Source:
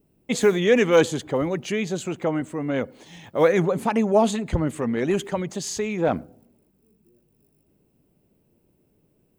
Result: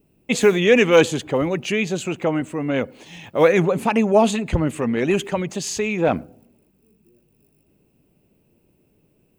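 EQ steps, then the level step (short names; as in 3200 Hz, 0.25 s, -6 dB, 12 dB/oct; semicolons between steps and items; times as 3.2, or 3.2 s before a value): bell 2600 Hz +8 dB 0.33 oct; +3.0 dB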